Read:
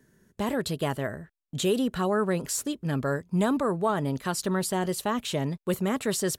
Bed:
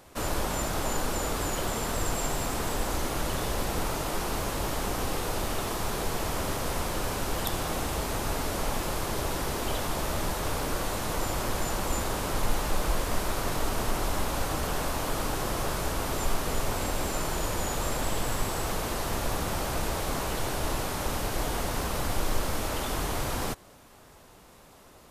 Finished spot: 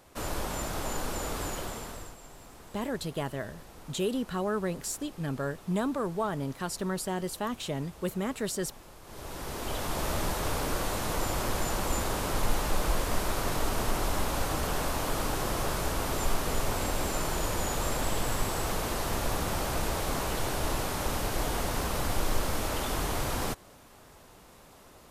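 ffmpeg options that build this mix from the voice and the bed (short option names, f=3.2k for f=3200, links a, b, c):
-filter_complex "[0:a]adelay=2350,volume=-5dB[a];[1:a]volume=15.5dB,afade=t=out:st=1.45:d=0.71:silence=0.158489,afade=t=in:st=9.03:d=1.05:silence=0.105925[b];[a][b]amix=inputs=2:normalize=0"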